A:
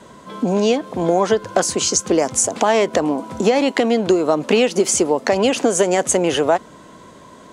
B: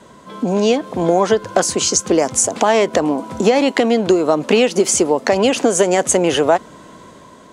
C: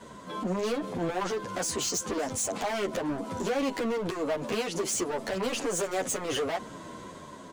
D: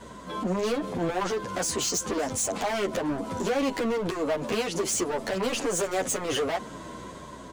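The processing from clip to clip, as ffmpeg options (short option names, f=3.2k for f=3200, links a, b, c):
-af "dynaudnorm=f=230:g=5:m=11.5dB,volume=-1dB"
-filter_complex "[0:a]asoftclip=type=hard:threshold=-17dB,alimiter=limit=-24dB:level=0:latency=1:release=21,asplit=2[a][b];[b]adelay=9.8,afreqshift=-2.9[c];[a][c]amix=inputs=2:normalize=1"
-af "aeval=exprs='val(0)+0.00158*(sin(2*PI*60*n/s)+sin(2*PI*2*60*n/s)/2+sin(2*PI*3*60*n/s)/3+sin(2*PI*4*60*n/s)/4+sin(2*PI*5*60*n/s)/5)':c=same,volume=2.5dB"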